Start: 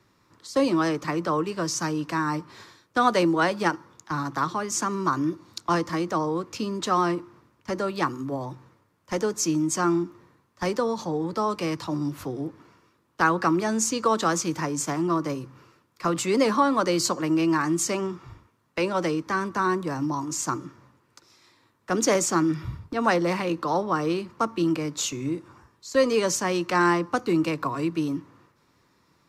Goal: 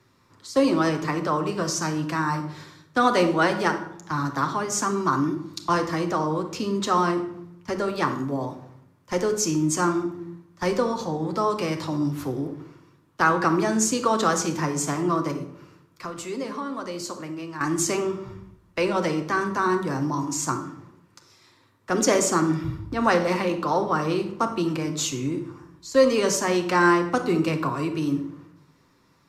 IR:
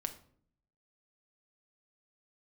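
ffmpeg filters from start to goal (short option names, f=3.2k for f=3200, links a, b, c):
-filter_complex "[0:a]asettb=1/sr,asplit=3[a][b][c];[a]atrim=end=15.314[d];[b]atrim=start=15.31:end=17.61,asetpts=PTS-STARTPTS,afade=t=in:d=0.004:c=qsin,afade=t=out:st=2.296:d=0.004:c=qsin,acompressor=threshold=-41dB:ratio=2[e];[c]atrim=start=17.606[f];[d][e]acrossfade=d=0.004:c1=hsin:c2=qsin[g];[g][f]acrossfade=d=0.004:c1=qsin:c2=hsin[h];[1:a]atrim=start_sample=2205,asetrate=29988,aresample=44100[i];[h][i]afir=irnorm=-1:irlink=0"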